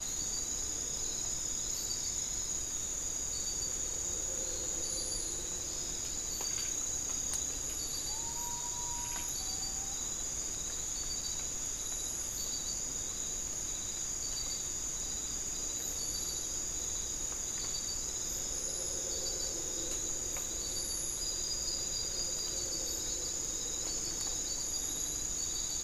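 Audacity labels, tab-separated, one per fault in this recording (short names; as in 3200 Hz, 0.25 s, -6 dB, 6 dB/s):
9.290000	9.290000	pop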